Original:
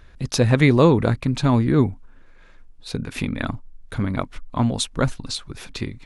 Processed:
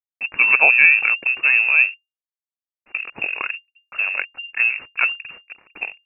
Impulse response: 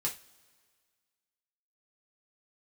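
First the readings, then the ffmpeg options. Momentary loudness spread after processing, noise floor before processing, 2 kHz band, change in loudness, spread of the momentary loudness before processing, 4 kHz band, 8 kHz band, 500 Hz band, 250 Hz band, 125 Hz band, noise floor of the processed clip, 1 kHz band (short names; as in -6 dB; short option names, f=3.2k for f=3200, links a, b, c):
19 LU, -47 dBFS, +16.5 dB, +5.5 dB, 16 LU, n/a, under -40 dB, -14.0 dB, under -25 dB, under -35 dB, under -85 dBFS, -2.5 dB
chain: -af "equalizer=f=820:t=o:w=0.3:g=-9,aeval=exprs='sgn(val(0))*max(abs(val(0))-0.0211,0)':c=same,lowpass=f=2.4k:t=q:w=0.5098,lowpass=f=2.4k:t=q:w=0.6013,lowpass=f=2.4k:t=q:w=0.9,lowpass=f=2.4k:t=q:w=2.563,afreqshift=-2800,volume=2.5dB"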